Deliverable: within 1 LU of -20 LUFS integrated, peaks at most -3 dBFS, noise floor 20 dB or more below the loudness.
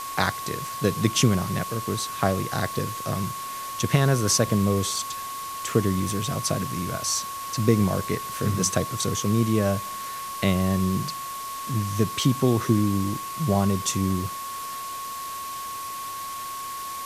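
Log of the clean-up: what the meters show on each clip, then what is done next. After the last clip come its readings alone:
steady tone 1.1 kHz; tone level -32 dBFS; noise floor -34 dBFS; noise floor target -46 dBFS; loudness -25.5 LUFS; peak level -5.0 dBFS; loudness target -20.0 LUFS
-> band-stop 1.1 kHz, Q 30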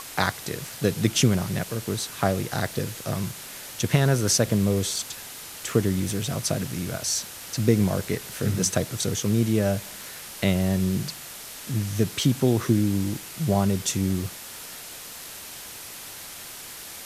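steady tone not found; noise floor -40 dBFS; noise floor target -45 dBFS
-> noise reduction 6 dB, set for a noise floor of -40 dBFS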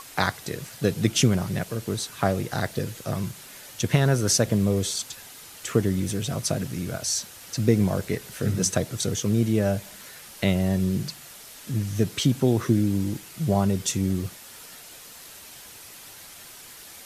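noise floor -45 dBFS; noise floor target -46 dBFS
-> noise reduction 6 dB, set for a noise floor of -45 dBFS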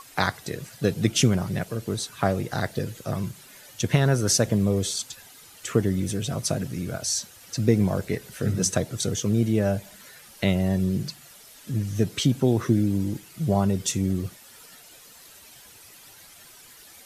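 noise floor -49 dBFS; loudness -25.5 LUFS; peak level -5.5 dBFS; loudness target -20.0 LUFS
-> trim +5.5 dB; peak limiter -3 dBFS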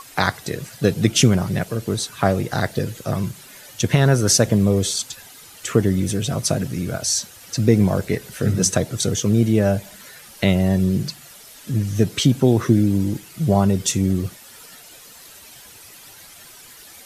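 loudness -20.0 LUFS; peak level -3.0 dBFS; noise floor -44 dBFS

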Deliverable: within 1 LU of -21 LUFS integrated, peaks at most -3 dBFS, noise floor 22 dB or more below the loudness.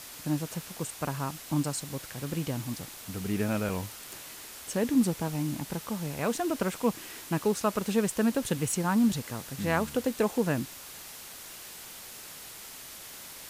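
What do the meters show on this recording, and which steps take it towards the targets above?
dropouts 2; longest dropout 3.2 ms; noise floor -45 dBFS; noise floor target -53 dBFS; loudness -30.5 LUFS; peak level -13.5 dBFS; loudness target -21.0 LUFS
-> interpolate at 1.64/3.69 s, 3.2 ms; noise print and reduce 8 dB; trim +9.5 dB

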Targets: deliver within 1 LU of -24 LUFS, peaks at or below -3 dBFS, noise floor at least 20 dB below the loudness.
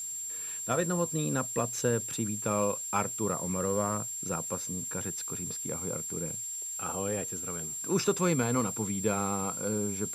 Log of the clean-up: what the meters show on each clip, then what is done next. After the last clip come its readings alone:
steady tone 7.4 kHz; tone level -35 dBFS; noise floor -38 dBFS; noise floor target -51 dBFS; loudness -31.0 LUFS; peak level -14.0 dBFS; loudness target -24.0 LUFS
-> band-stop 7.4 kHz, Q 30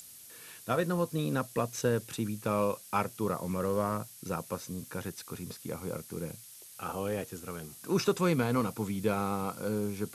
steady tone not found; noise floor -51 dBFS; noise floor target -53 dBFS
-> noise reduction 6 dB, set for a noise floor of -51 dBFS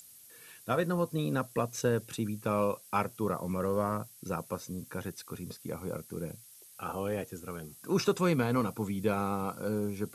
noise floor -55 dBFS; loudness -33.5 LUFS; peak level -14.5 dBFS; loudness target -24.0 LUFS
-> trim +9.5 dB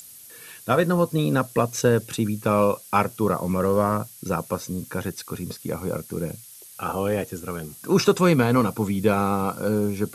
loudness -24.0 LUFS; peak level -5.0 dBFS; noise floor -45 dBFS

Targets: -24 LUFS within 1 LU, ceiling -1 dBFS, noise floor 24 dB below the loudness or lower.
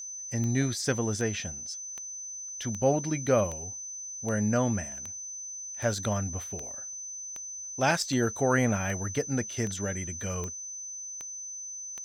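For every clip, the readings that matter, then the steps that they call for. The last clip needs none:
clicks found 16; steady tone 6.1 kHz; tone level -37 dBFS; loudness -30.5 LUFS; peak level -12.0 dBFS; loudness target -24.0 LUFS
-> de-click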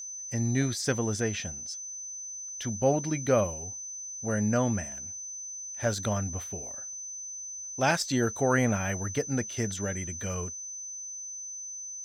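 clicks found 0; steady tone 6.1 kHz; tone level -37 dBFS
-> band-stop 6.1 kHz, Q 30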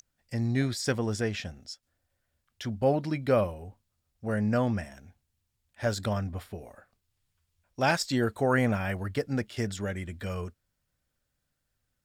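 steady tone not found; loudness -30.0 LUFS; peak level -12.0 dBFS; loudness target -24.0 LUFS
-> trim +6 dB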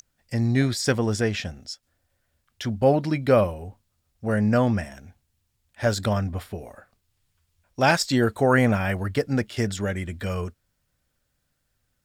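loudness -24.0 LUFS; peak level -6.0 dBFS; noise floor -74 dBFS

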